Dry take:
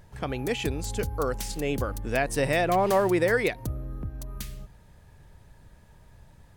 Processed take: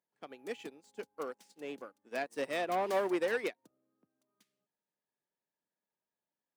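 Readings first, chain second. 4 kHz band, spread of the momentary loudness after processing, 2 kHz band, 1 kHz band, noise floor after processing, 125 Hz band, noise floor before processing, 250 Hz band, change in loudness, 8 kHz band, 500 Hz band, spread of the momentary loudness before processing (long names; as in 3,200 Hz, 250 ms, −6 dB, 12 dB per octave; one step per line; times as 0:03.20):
−11.0 dB, 16 LU, −10.5 dB, −9.5 dB, below −85 dBFS, −27.5 dB, −55 dBFS, −12.0 dB, −9.0 dB, −17.5 dB, −9.5 dB, 16 LU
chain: running median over 3 samples
soft clipping −20.5 dBFS, distortion −14 dB
high-pass filter 230 Hz 24 dB per octave
expander for the loud parts 2.5 to 1, over −44 dBFS
level −3.5 dB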